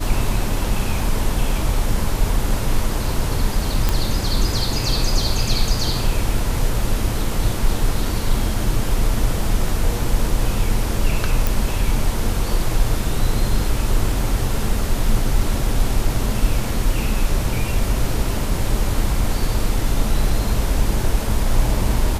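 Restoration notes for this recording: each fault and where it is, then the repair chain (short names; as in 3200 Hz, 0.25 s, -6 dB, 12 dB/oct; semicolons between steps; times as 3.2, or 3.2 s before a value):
3.89 pop -3 dBFS
11.47 pop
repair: de-click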